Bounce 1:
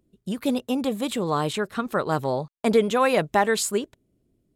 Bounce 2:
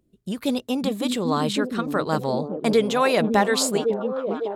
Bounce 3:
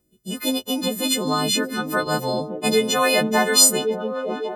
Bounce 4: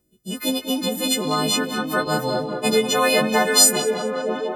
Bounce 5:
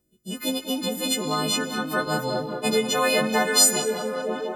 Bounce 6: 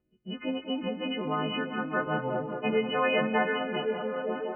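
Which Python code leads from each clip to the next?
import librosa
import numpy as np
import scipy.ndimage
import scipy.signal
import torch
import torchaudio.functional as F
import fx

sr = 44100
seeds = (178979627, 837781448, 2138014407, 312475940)

y1 = fx.echo_stepped(x, sr, ms=554, hz=240.0, octaves=0.7, feedback_pct=70, wet_db=-0.5)
y1 = fx.dynamic_eq(y1, sr, hz=4600.0, q=1.4, threshold_db=-47.0, ratio=4.0, max_db=6)
y2 = fx.freq_snap(y1, sr, grid_st=3)
y3 = fx.echo_tape(y2, sr, ms=196, feedback_pct=82, wet_db=-9.5, lp_hz=3100.0, drive_db=4.0, wow_cents=23)
y4 = fx.rev_plate(y3, sr, seeds[0], rt60_s=2.2, hf_ratio=0.75, predelay_ms=0, drr_db=16.0)
y4 = F.gain(torch.from_numpy(y4), -3.5).numpy()
y5 = fx.brickwall_lowpass(y4, sr, high_hz=3000.0)
y5 = F.gain(torch.from_numpy(y5), -4.0).numpy()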